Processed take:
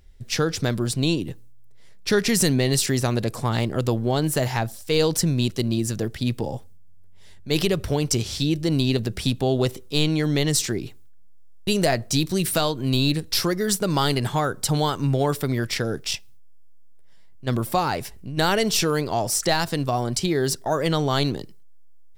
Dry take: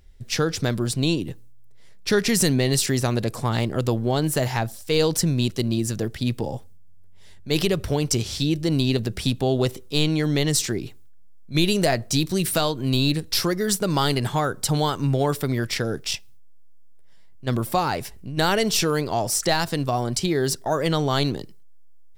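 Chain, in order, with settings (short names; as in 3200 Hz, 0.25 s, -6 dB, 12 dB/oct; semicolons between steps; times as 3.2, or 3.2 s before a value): stuck buffer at 11.37/16.4, samples 1024, times 12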